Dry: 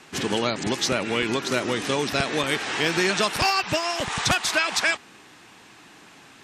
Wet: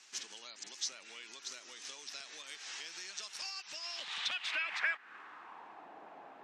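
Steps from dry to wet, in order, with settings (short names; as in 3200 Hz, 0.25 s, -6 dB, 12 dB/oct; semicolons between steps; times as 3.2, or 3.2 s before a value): HPF 130 Hz; high shelf 3400 Hz -9.5 dB; compressor 6:1, threshold -33 dBFS, peak gain reduction 13.5 dB; band-pass sweep 6000 Hz -> 710 Hz, 3.64–5.89; gain +6 dB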